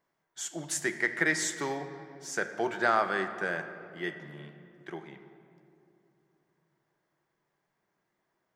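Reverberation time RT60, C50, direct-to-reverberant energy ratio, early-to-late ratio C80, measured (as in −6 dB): 2.7 s, 9.5 dB, 8.0 dB, 10.5 dB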